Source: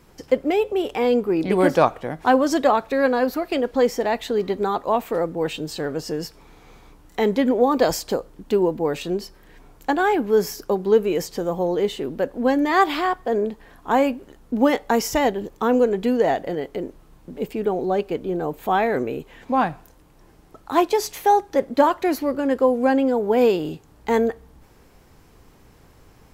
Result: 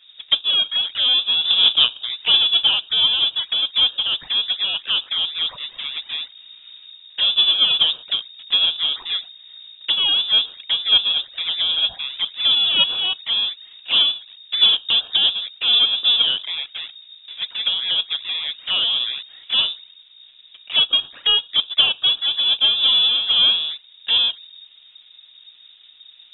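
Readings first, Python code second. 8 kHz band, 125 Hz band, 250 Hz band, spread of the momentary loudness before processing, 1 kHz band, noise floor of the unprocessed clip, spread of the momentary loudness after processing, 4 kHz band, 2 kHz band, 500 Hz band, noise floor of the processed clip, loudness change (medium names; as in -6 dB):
under -40 dB, under -15 dB, under -25 dB, 10 LU, -15.5 dB, -52 dBFS, 12 LU, +24.5 dB, 0.0 dB, -25.0 dB, -49 dBFS, +4.5 dB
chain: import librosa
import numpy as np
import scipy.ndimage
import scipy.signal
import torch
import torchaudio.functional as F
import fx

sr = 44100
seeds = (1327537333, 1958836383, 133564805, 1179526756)

y = fx.halfwave_hold(x, sr)
y = fx.env_flanger(y, sr, rest_ms=6.6, full_db=-16.0)
y = fx.air_absorb(y, sr, metres=460.0)
y = fx.freq_invert(y, sr, carrier_hz=3700)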